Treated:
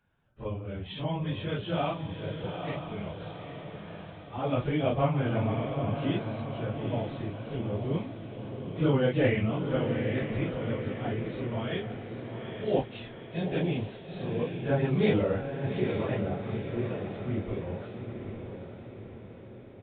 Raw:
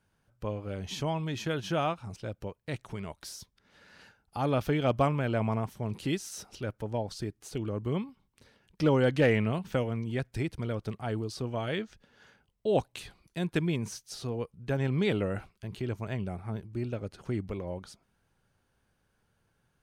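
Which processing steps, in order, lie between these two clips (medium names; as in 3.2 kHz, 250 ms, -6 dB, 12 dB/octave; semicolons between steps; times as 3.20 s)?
phase randomisation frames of 100 ms; 14.39–16.44 s: peaking EQ 680 Hz +7.5 dB 2.3 oct; resampled via 8 kHz; dynamic bell 1.3 kHz, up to -3 dB, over -45 dBFS, Q 0.82; echo that smears into a reverb 854 ms, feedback 53%, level -6 dB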